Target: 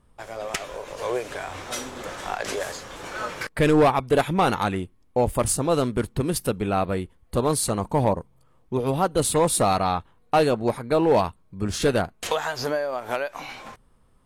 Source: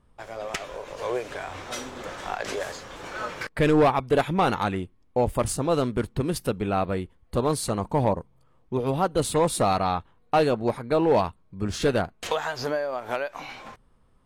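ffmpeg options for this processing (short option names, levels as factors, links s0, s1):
-af "equalizer=f=11000:t=o:w=1.2:g=6.5,volume=1.19"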